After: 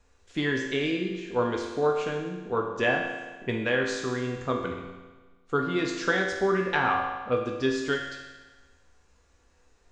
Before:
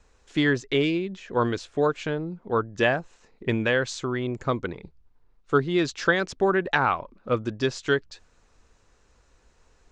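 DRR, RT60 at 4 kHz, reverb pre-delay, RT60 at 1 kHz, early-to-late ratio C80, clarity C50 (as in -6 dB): -0.5 dB, 1.3 s, 4 ms, 1.3 s, 5.5 dB, 3.5 dB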